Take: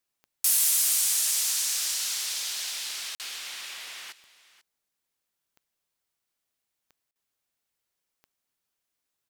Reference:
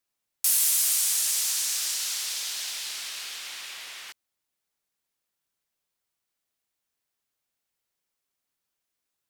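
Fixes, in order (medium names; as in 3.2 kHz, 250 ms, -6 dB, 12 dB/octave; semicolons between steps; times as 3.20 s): clip repair -14.5 dBFS; de-click; interpolate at 3.15/7.11 s, 48 ms; inverse comb 491 ms -18 dB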